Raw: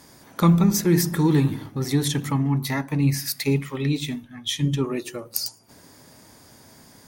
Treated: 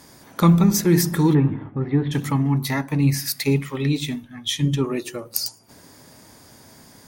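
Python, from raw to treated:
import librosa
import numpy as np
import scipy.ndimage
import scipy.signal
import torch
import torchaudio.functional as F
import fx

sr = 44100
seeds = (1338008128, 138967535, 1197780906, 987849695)

y = fx.bessel_lowpass(x, sr, hz=1600.0, order=8, at=(1.33, 2.11), fade=0.02)
y = y * 10.0 ** (2.0 / 20.0)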